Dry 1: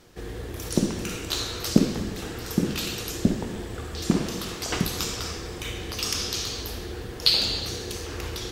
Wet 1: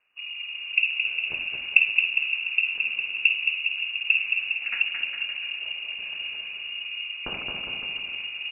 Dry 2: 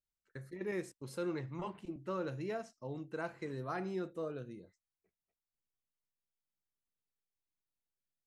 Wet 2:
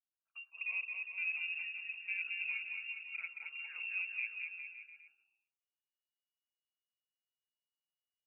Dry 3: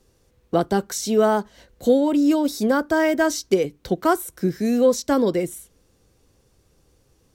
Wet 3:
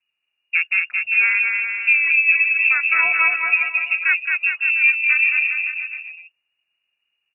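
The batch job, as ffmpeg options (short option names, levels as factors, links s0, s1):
-filter_complex "[0:a]afwtdn=0.0355,asplit=2[s0][s1];[s1]aecho=0:1:220|407|566|701.1|815.9:0.631|0.398|0.251|0.158|0.1[s2];[s0][s2]amix=inputs=2:normalize=0,lowpass=f=2500:t=q:w=0.5098,lowpass=f=2500:t=q:w=0.6013,lowpass=f=2500:t=q:w=0.9,lowpass=f=2500:t=q:w=2.563,afreqshift=-2900"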